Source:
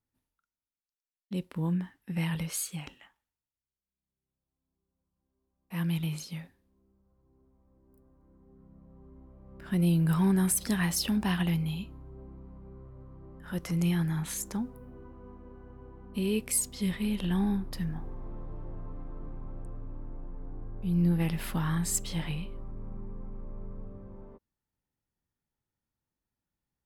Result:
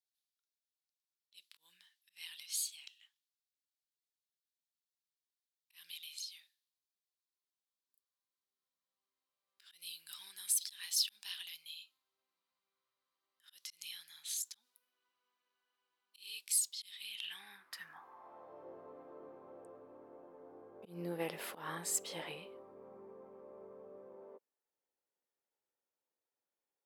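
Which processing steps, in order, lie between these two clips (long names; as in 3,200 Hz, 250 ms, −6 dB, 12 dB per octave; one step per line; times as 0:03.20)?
volume swells 143 ms
high-pass filter sweep 3,900 Hz → 480 Hz, 0:16.94–0:18.70
level −5 dB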